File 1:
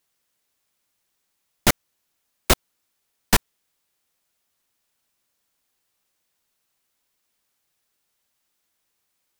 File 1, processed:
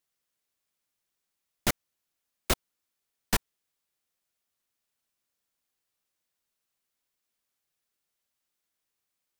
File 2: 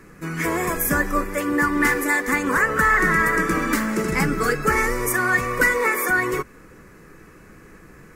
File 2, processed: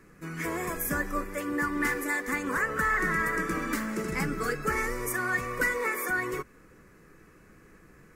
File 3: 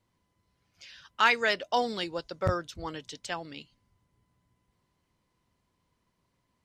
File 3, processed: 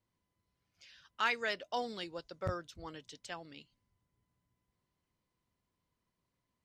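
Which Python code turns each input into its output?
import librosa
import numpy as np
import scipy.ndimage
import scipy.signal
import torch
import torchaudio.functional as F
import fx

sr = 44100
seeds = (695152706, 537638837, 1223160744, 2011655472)

y = fx.peak_eq(x, sr, hz=890.0, db=-2.0, octaves=0.28)
y = y * 10.0 ** (-9.0 / 20.0)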